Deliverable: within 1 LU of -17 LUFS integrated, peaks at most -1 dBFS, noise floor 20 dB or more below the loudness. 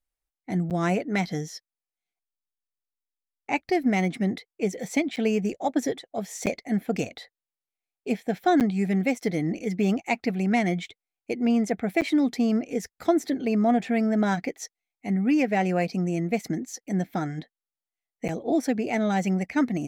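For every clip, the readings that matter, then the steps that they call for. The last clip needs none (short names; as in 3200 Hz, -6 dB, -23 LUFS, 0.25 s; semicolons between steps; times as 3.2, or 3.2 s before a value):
dropouts 6; longest dropout 8.2 ms; loudness -26.0 LUFS; peak -10.5 dBFS; loudness target -17.0 LUFS
-> interpolate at 0.7/5.16/6.46/8.6/12.01/18.28, 8.2 ms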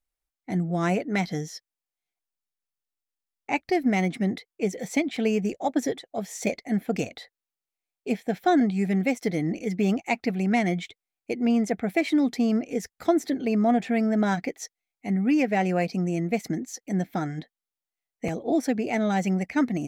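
dropouts 0; loudness -26.0 LUFS; peak -10.5 dBFS; loudness target -17.0 LUFS
-> gain +9 dB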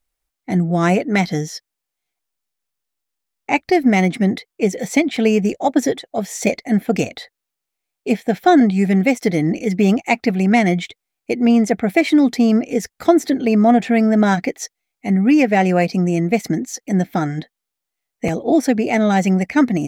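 loudness -17.0 LUFS; peak -1.5 dBFS; noise floor -82 dBFS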